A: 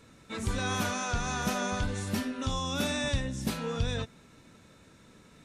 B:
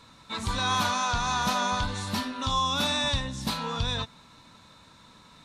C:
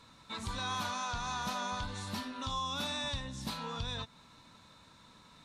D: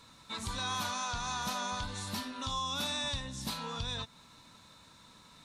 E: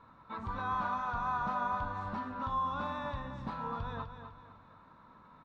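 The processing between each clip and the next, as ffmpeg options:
-af "equalizer=f=400:t=o:w=0.67:g=-6,equalizer=f=1k:t=o:w=0.67:g=12,equalizer=f=4k:t=o:w=0.67:g=11"
-af "acompressor=threshold=-37dB:ratio=1.5,volume=-5dB"
-af "highshelf=f=5.2k:g=7.5"
-af "lowpass=f=1.2k:t=q:w=1.8,aecho=1:1:252|504|756|1008:0.355|0.131|0.0486|0.018,volume=-1dB"

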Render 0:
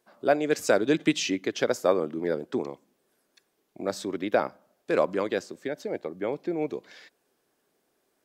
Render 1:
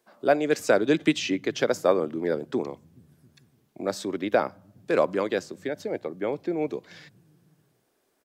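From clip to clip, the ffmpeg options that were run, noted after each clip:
-filter_complex "[0:a]acrossover=split=130|3800[a][b][c];[a]aecho=1:1:420|693|870.4|985.8|1061:0.631|0.398|0.251|0.158|0.1[d];[c]alimiter=level_in=5.5dB:limit=-24dB:level=0:latency=1:release=265,volume=-5.5dB[e];[d][b][e]amix=inputs=3:normalize=0,volume=1.5dB"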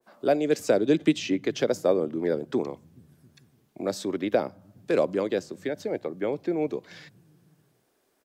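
-filter_complex "[0:a]acrossover=split=710|2300[a][b][c];[b]acompressor=threshold=-40dB:ratio=6[d];[a][d][c]amix=inputs=3:normalize=0,adynamicequalizer=threshold=0.0112:dfrequency=1600:dqfactor=0.7:tfrequency=1600:tqfactor=0.7:attack=5:release=100:ratio=0.375:range=2.5:mode=cutabove:tftype=highshelf,volume=1dB"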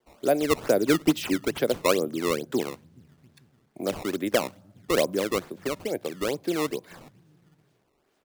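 -af "acrusher=samples=16:mix=1:aa=0.000001:lfo=1:lforange=25.6:lforate=2.3"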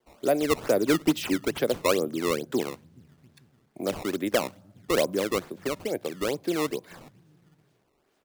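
-af "asoftclip=type=tanh:threshold=-11dB"

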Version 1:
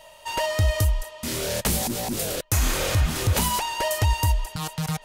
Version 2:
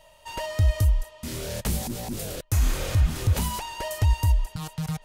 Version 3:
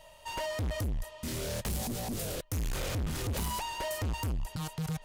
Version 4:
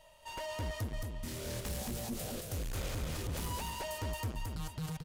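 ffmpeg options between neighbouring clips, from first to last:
-af "lowshelf=f=190:g=10,volume=-7.5dB"
-af "asoftclip=type=tanh:threshold=-30dB"
-af "aecho=1:1:223|446|669:0.708|0.17|0.0408,volume=-6dB"

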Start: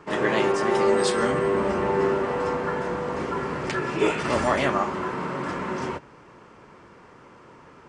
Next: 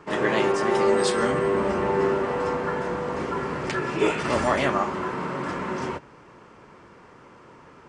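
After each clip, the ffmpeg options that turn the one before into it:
-af anull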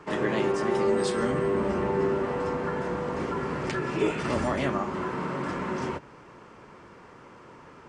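-filter_complex "[0:a]acrossover=split=360[a][b];[b]acompressor=threshold=-33dB:ratio=2[c];[a][c]amix=inputs=2:normalize=0"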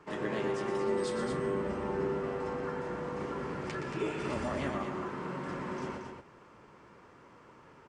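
-af "aecho=1:1:119.5|227.4:0.398|0.447,volume=-8.5dB"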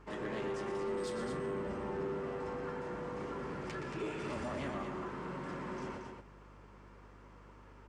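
-af "aeval=exprs='val(0)+0.002*(sin(2*PI*50*n/s)+sin(2*PI*2*50*n/s)/2+sin(2*PI*3*50*n/s)/3+sin(2*PI*4*50*n/s)/4+sin(2*PI*5*50*n/s)/5)':c=same,asoftclip=type=tanh:threshold=-28.5dB,volume=-3dB"

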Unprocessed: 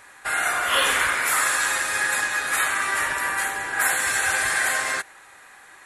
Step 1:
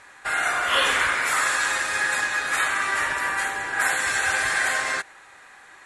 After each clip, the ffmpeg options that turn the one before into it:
-af "lowpass=7.6k"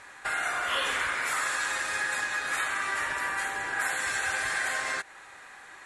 -af "acompressor=threshold=-32dB:ratio=2"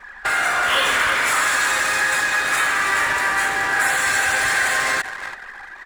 -af "aeval=exprs='val(0)+0.5*0.0188*sgn(val(0))':c=same,aecho=1:1:334|668|1002|1336:0.316|0.12|0.0457|0.0174,anlmdn=10,volume=8.5dB"

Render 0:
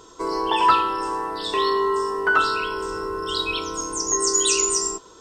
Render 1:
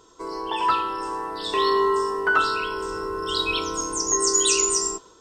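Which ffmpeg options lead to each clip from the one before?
-af "dynaudnorm=f=450:g=3:m=11.5dB,volume=-7dB"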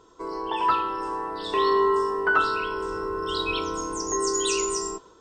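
-af "highshelf=f=3.9k:g=-11"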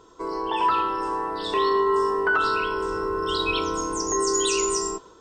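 -af "alimiter=limit=-16.5dB:level=0:latency=1:release=61,volume=3dB"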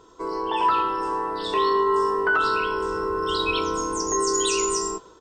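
-filter_complex "[0:a]asplit=2[a][b];[b]adelay=16,volume=-12dB[c];[a][c]amix=inputs=2:normalize=0"

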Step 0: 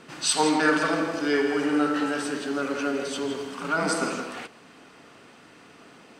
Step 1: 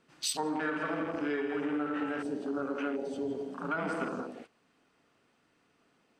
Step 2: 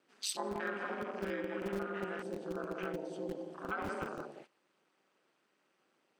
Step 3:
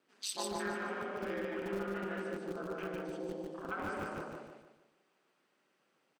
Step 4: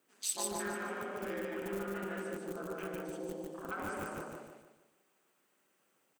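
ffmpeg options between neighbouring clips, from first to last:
-af "afwtdn=0.0282,lowshelf=f=63:g=9,acompressor=threshold=-26dB:ratio=6,volume=-3.5dB"
-filter_complex "[0:a]aeval=exprs='val(0)*sin(2*PI*100*n/s)':c=same,acrossover=split=180[a][b];[a]acrusher=bits=6:mix=0:aa=0.000001[c];[c][b]amix=inputs=2:normalize=0,volume=-2dB"
-filter_complex "[0:a]flanger=delay=4.4:depth=3.9:regen=-75:speed=0.37:shape=triangular,asplit=2[a][b];[b]aecho=0:1:148|296|444|592|740:0.708|0.283|0.113|0.0453|0.0181[c];[a][c]amix=inputs=2:normalize=0,volume=2.5dB"
-filter_complex "[0:a]aexciter=amount=2:drive=9:freq=6.6k,asplit=2[a][b];[b]aeval=exprs='0.0299*(abs(mod(val(0)/0.0299+3,4)-2)-1)':c=same,volume=-8.5dB[c];[a][c]amix=inputs=2:normalize=0,volume=-3.5dB"

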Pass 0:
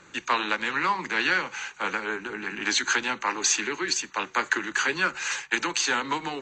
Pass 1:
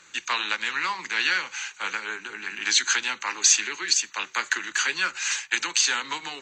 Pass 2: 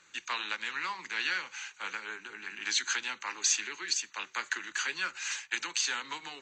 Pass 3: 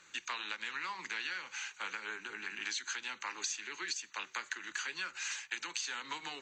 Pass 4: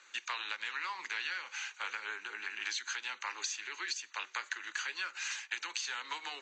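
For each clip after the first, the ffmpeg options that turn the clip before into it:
-af "tiltshelf=f=1.3k:g=-9,volume=-2.5dB"
-af "highshelf=f=9.8k:g=-6,volume=-8dB"
-af "acompressor=threshold=-37dB:ratio=6,volume=1dB"
-af "highpass=490,lowpass=6.8k,volume=1.5dB"

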